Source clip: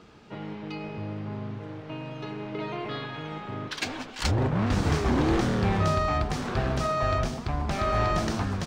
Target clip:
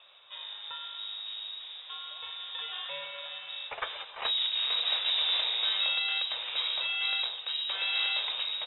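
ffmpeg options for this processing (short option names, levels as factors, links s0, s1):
-af "lowpass=f=3300:t=q:w=0.5098,lowpass=f=3300:t=q:w=0.6013,lowpass=f=3300:t=q:w=0.9,lowpass=f=3300:t=q:w=2.563,afreqshift=-3900,equalizer=f=250:t=o:w=1:g=-10,equalizer=f=500:t=o:w=1:g=11,equalizer=f=1000:t=o:w=1:g=7,volume=0.501"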